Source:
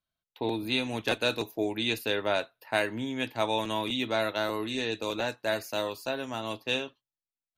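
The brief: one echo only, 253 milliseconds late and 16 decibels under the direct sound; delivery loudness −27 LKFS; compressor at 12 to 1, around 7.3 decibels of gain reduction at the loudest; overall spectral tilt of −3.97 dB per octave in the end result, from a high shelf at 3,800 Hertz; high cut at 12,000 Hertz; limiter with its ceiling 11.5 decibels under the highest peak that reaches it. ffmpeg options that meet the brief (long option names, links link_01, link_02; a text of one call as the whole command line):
ffmpeg -i in.wav -af "lowpass=12000,highshelf=frequency=3800:gain=3.5,acompressor=threshold=-29dB:ratio=12,alimiter=level_in=4dB:limit=-24dB:level=0:latency=1,volume=-4dB,aecho=1:1:253:0.158,volume=12dB" out.wav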